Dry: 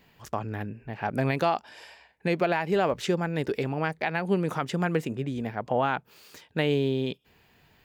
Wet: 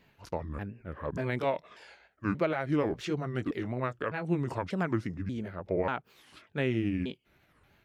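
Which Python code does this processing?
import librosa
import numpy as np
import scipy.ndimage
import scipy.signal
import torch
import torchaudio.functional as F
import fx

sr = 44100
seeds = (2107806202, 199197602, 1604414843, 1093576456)

y = fx.pitch_ramps(x, sr, semitones=-7.0, every_ms=588)
y = fx.high_shelf(y, sr, hz=7500.0, db=-7.5)
y = fx.notch(y, sr, hz=770.0, q=12.0)
y = fx.record_warp(y, sr, rpm=45.0, depth_cents=250.0)
y = F.gain(torch.from_numpy(y), -3.0).numpy()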